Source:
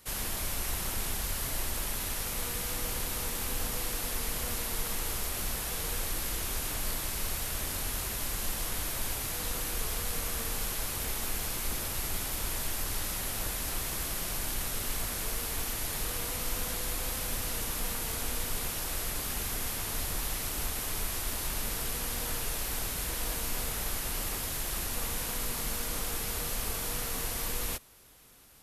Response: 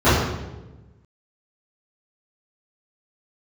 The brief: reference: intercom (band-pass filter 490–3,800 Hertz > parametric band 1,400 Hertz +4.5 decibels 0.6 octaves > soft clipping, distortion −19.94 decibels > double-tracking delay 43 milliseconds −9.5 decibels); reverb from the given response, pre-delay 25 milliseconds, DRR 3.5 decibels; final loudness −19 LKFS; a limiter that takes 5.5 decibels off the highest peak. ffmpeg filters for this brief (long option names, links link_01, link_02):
-filter_complex "[0:a]alimiter=level_in=0.5dB:limit=-24dB:level=0:latency=1,volume=-0.5dB,asplit=2[link_01][link_02];[1:a]atrim=start_sample=2205,adelay=25[link_03];[link_02][link_03]afir=irnorm=-1:irlink=0,volume=-29dB[link_04];[link_01][link_04]amix=inputs=2:normalize=0,highpass=490,lowpass=3800,equalizer=frequency=1400:width_type=o:width=0.6:gain=4.5,asoftclip=threshold=-33dB,asplit=2[link_05][link_06];[link_06]adelay=43,volume=-9.5dB[link_07];[link_05][link_07]amix=inputs=2:normalize=0,volume=21dB"